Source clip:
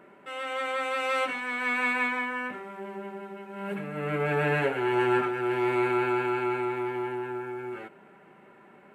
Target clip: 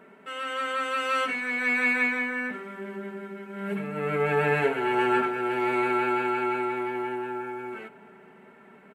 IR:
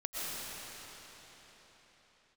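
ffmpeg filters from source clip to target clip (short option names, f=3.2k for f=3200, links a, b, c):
-filter_complex "[0:a]aecho=1:1:4.5:0.64,asplit=2[a][b];[1:a]atrim=start_sample=2205[c];[b][c]afir=irnorm=-1:irlink=0,volume=-27.5dB[d];[a][d]amix=inputs=2:normalize=0"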